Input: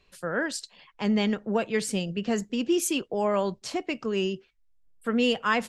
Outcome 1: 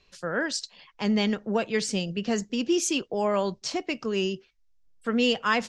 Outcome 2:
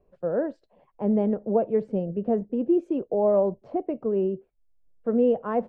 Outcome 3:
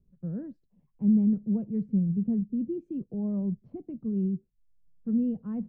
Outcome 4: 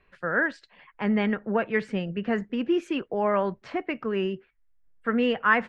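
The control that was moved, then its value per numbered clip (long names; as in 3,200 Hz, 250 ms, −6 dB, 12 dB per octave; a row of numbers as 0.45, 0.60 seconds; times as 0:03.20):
low-pass with resonance, frequency: 5,900, 600, 180, 1,800 Hertz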